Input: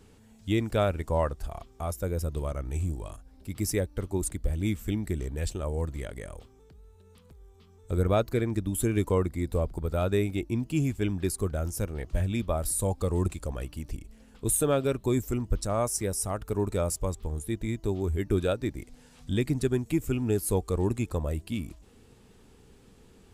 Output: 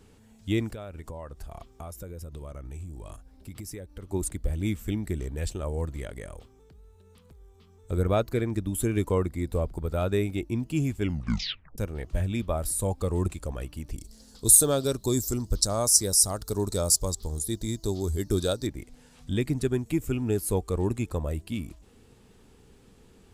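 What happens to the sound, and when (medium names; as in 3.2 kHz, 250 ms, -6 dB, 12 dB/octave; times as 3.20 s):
0.69–4.09 s: compression 10:1, threshold -35 dBFS
11.01 s: tape stop 0.77 s
13.98–18.67 s: resonant high shelf 3.4 kHz +10 dB, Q 3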